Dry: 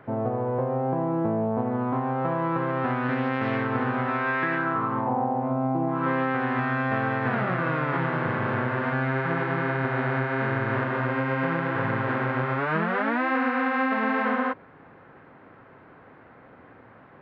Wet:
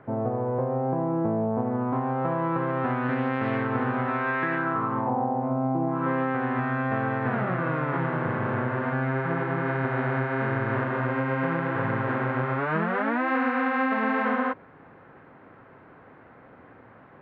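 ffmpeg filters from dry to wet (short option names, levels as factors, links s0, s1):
-af "asetnsamples=n=441:p=0,asendcmd='1.93 lowpass f 2600;5.1 lowpass f 1600;9.66 lowpass f 2300;13.28 lowpass f 3800',lowpass=f=1600:p=1"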